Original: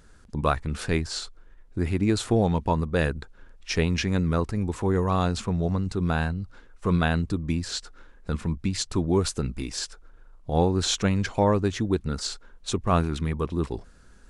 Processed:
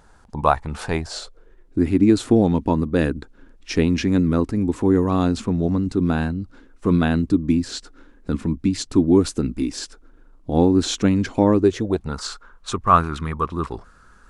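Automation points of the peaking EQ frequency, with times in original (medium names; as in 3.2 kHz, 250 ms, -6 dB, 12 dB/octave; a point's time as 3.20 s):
peaking EQ +14 dB 0.82 oct
0.91 s 850 Hz
1.80 s 280 Hz
11.54 s 280 Hz
12.25 s 1.2 kHz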